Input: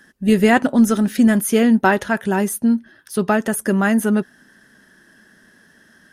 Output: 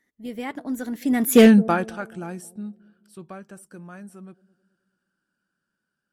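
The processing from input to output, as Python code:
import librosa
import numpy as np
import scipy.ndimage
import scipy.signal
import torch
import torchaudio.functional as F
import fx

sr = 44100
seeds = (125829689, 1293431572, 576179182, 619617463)

y = fx.doppler_pass(x, sr, speed_mps=39, closest_m=2.8, pass_at_s=1.42)
y = fx.echo_bbd(y, sr, ms=214, stages=1024, feedback_pct=43, wet_db=-21)
y = np.clip(10.0 ** (10.5 / 20.0) * y, -1.0, 1.0) / 10.0 ** (10.5 / 20.0)
y = F.gain(torch.from_numpy(y), 5.5).numpy()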